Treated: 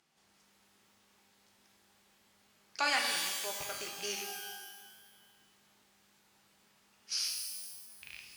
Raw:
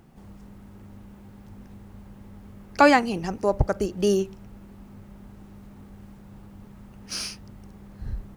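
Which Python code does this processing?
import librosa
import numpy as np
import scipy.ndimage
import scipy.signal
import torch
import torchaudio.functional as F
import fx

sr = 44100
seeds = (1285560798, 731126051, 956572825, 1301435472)

y = fx.rattle_buzz(x, sr, strikes_db=-30.0, level_db=-24.0)
y = fx.bandpass_q(y, sr, hz=5100.0, q=0.91)
y = fx.rev_shimmer(y, sr, seeds[0], rt60_s=1.4, semitones=12, shimmer_db=-2, drr_db=2.0)
y = F.gain(torch.from_numpy(y), -3.0).numpy()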